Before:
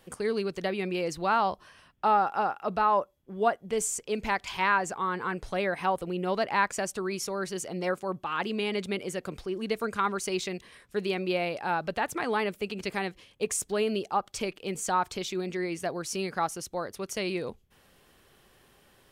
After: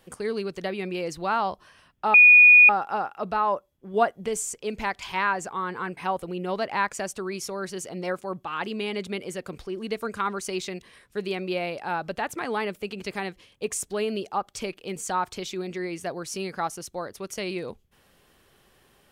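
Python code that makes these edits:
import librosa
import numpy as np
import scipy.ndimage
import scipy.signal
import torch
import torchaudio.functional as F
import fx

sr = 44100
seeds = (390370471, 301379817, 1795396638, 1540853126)

y = fx.edit(x, sr, fx.insert_tone(at_s=2.14, length_s=0.55, hz=2460.0, db=-9.0),
    fx.clip_gain(start_s=3.39, length_s=0.34, db=3.5),
    fx.cut(start_s=5.42, length_s=0.34), tone=tone)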